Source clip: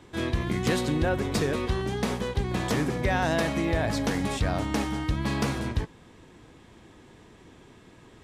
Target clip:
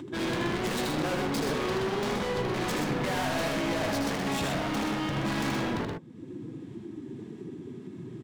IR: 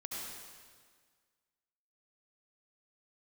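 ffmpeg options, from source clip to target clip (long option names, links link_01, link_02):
-af "afftdn=noise_reduction=25:noise_floor=-40,highpass=frequency=130:width=0.5412,highpass=frequency=130:width=1.3066,acompressor=mode=upward:threshold=-41dB:ratio=2.5,asoftclip=type=hard:threshold=-39.5dB,aecho=1:1:78.72|125.4:0.562|0.562,volume=9dB"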